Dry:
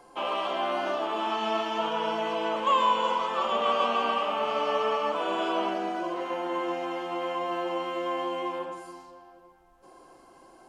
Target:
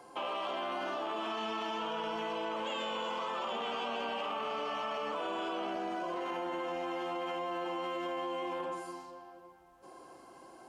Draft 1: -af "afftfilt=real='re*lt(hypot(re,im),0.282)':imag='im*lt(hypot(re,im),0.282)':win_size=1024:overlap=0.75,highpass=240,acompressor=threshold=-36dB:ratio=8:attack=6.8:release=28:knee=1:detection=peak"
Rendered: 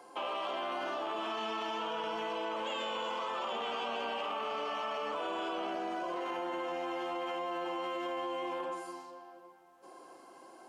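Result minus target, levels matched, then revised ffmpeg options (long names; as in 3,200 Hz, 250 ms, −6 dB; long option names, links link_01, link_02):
125 Hz band −5.0 dB
-af "afftfilt=real='re*lt(hypot(re,im),0.282)':imag='im*lt(hypot(re,im),0.282)':win_size=1024:overlap=0.75,highpass=70,acompressor=threshold=-36dB:ratio=8:attack=6.8:release=28:knee=1:detection=peak"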